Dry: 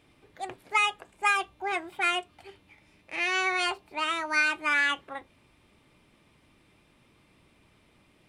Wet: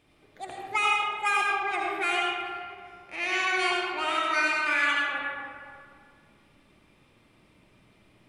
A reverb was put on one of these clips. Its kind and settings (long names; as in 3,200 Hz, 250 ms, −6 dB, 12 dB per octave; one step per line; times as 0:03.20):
comb and all-pass reverb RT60 2.2 s, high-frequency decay 0.5×, pre-delay 35 ms, DRR −3 dB
level −3 dB